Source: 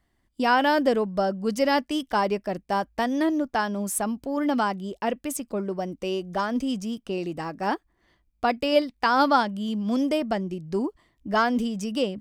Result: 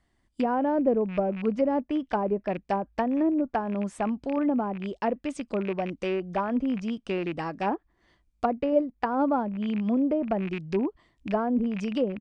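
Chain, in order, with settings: rattling part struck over -35 dBFS, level -25 dBFS; downsampling 22050 Hz; treble ducked by the level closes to 610 Hz, closed at -20 dBFS

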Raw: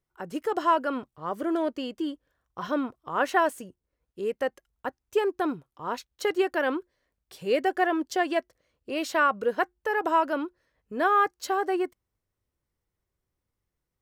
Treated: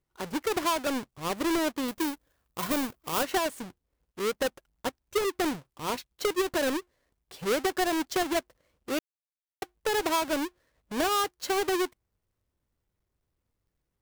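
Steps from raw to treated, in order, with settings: half-waves squared off; 1.88–3.23 high shelf 11000 Hz +11.5 dB; compressor 5:1, threshold -22 dBFS, peak gain reduction 8 dB; 8.99–9.62 mute; gain -2.5 dB

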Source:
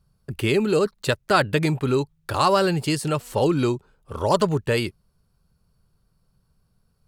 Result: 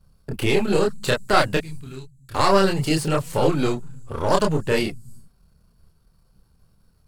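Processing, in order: half-wave gain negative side -7 dB; 1.57–2.35 passive tone stack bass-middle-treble 6-0-2; in parallel at 0 dB: compressor, threshold -38 dBFS, peak gain reduction 22 dB; on the sum: chorus voices 4, 1.2 Hz, delay 28 ms, depth 3 ms; on a send at -13.5 dB: inverse Chebyshev band-stop 490–2700 Hz, stop band 60 dB + reverb, pre-delay 3 ms; on the sum: gain +5 dB

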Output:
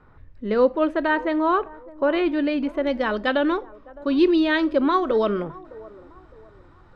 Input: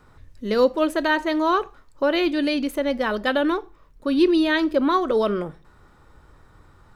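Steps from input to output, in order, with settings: LPF 2200 Hz 12 dB/oct, from 2.87 s 4100 Hz; band-limited delay 0.61 s, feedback 35%, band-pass 590 Hz, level -19.5 dB

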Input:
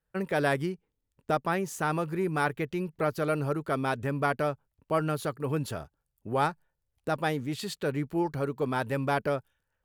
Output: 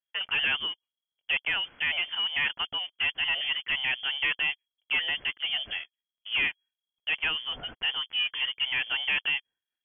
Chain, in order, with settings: bell 190 Hz -13 dB 1.1 oct; sample leveller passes 3; inverted band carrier 3300 Hz; gain -7 dB

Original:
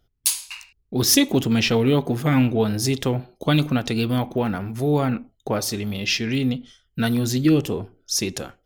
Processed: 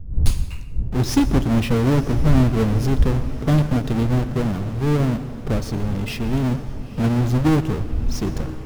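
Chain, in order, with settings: half-waves squared off; wind noise 82 Hz -28 dBFS; tilt -2.5 dB/oct; on a send: diffused feedback echo 0.96 s, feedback 58%, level -15 dB; on the sum: plate-style reverb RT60 1.2 s, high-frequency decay 0.65×, pre-delay 0.105 s, DRR 14 dB; gain -8 dB

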